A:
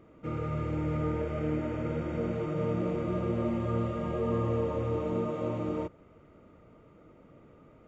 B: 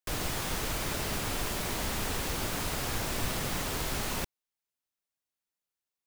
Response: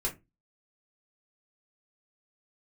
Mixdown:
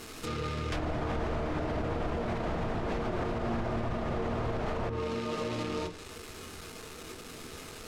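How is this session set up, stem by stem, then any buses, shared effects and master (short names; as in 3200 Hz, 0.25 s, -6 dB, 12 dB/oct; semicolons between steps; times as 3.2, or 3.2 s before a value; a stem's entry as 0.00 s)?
+2.5 dB, 0.00 s, send -6 dB, companded quantiser 4-bit; compressor 12:1, threshold -34 dBFS, peak gain reduction 10 dB
+3.0 dB, 0.65 s, no send, bell 660 Hz +8 dB 0.25 oct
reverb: on, RT60 0.20 s, pre-delay 3 ms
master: treble ducked by the level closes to 1100 Hz, closed at -24 dBFS; high shelf 2400 Hz +11.5 dB; limiter -24 dBFS, peak gain reduction 8.5 dB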